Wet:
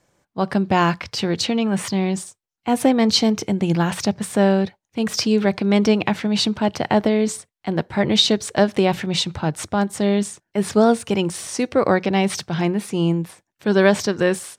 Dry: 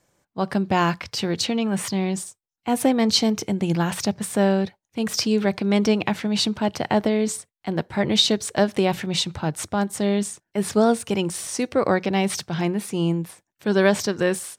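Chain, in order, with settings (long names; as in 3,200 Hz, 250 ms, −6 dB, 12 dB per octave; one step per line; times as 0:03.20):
high-shelf EQ 9,000 Hz −8 dB
level +3 dB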